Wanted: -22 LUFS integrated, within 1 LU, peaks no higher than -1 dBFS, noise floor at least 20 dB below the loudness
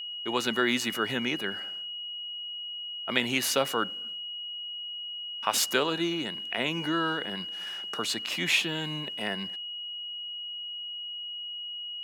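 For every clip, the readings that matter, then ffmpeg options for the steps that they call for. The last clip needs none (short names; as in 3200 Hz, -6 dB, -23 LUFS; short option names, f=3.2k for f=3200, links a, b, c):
steady tone 2900 Hz; tone level -35 dBFS; loudness -30.0 LUFS; peak -8.5 dBFS; loudness target -22.0 LUFS
-> -af "bandreject=f=2.9k:w=30"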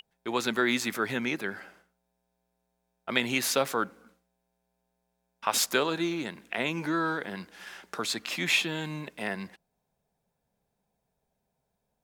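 steady tone none; loudness -29.5 LUFS; peak -9.0 dBFS; loudness target -22.0 LUFS
-> -af "volume=7.5dB"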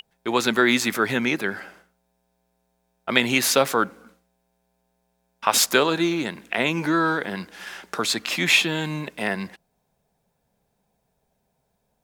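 loudness -22.0 LUFS; peak -1.5 dBFS; noise floor -73 dBFS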